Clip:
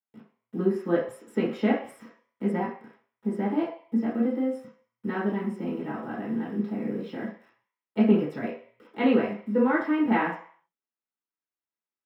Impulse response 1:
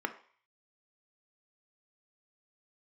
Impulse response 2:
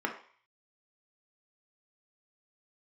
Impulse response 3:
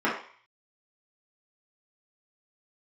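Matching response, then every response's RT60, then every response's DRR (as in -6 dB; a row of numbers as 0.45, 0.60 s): 3; 0.50, 0.50, 0.50 s; 7.5, 1.5, -8.0 dB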